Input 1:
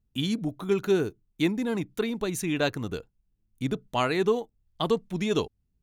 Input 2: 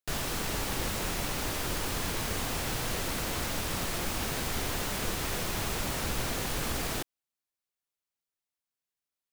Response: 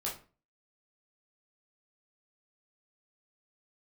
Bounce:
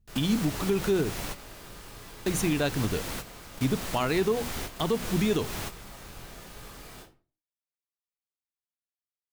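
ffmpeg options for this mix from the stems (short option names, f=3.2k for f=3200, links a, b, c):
-filter_complex "[0:a]lowshelf=f=200:g=6.5,bandreject=f=60:t=h:w=6,bandreject=f=120:t=h:w=6,bandreject=f=180:t=h:w=6,bandreject=f=240:t=h:w=6,volume=2.5dB,asplit=3[a][b][c];[a]atrim=end=1.34,asetpts=PTS-STARTPTS,afade=t=out:st=1.336:d=0.004:c=hsin[d];[b]atrim=start=1.34:end=2.26,asetpts=PTS-STARTPTS,volume=0[e];[c]atrim=start=2.26,asetpts=PTS-STARTPTS,afade=t=in:d=0.004:c=hsin[f];[d][e][f]concat=n=3:v=0:a=1,asplit=2[g][h];[1:a]volume=-3.5dB,asplit=2[i][j];[j]volume=-13dB[k];[h]apad=whole_len=411306[l];[i][l]sidechaingate=range=-22dB:threshold=-53dB:ratio=16:detection=peak[m];[2:a]atrim=start_sample=2205[n];[k][n]afir=irnorm=-1:irlink=0[o];[g][m][o]amix=inputs=3:normalize=0,alimiter=limit=-16dB:level=0:latency=1:release=147"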